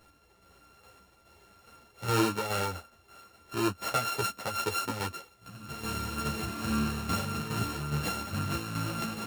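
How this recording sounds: a buzz of ramps at a fixed pitch in blocks of 32 samples; tremolo saw down 2.4 Hz, depth 55%; a shimmering, thickened sound

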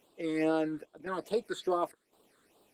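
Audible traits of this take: chopped level 0.94 Hz, depth 65%, duty 80%; phasing stages 8, 2.4 Hz, lowest notch 730–2000 Hz; Opus

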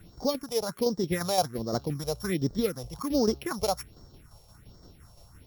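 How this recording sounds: a buzz of ramps at a fixed pitch in blocks of 8 samples; tremolo saw down 5.8 Hz, depth 50%; a quantiser's noise floor 12-bit, dither triangular; phasing stages 4, 1.3 Hz, lowest notch 260–2600 Hz

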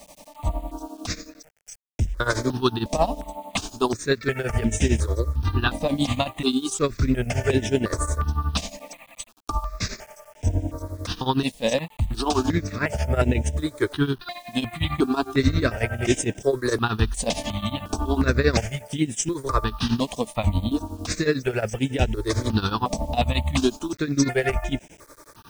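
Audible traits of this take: tremolo triangle 11 Hz, depth 90%; a quantiser's noise floor 10-bit, dither none; notches that jump at a steady rate 2.8 Hz 380–4300 Hz

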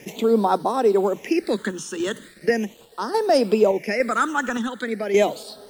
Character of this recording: a quantiser's noise floor 8-bit, dither none; phasing stages 8, 0.39 Hz, lowest notch 640–2300 Hz; random-step tremolo; MP3

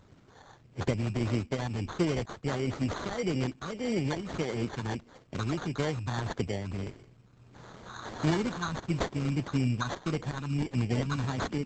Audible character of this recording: phasing stages 4, 1.6 Hz, lowest notch 550–3300 Hz; aliases and images of a low sample rate 2600 Hz, jitter 0%; Opus

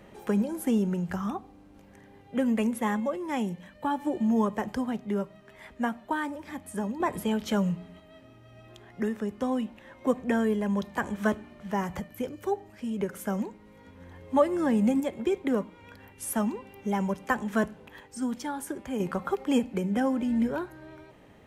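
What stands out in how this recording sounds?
random-step tremolo 1 Hz

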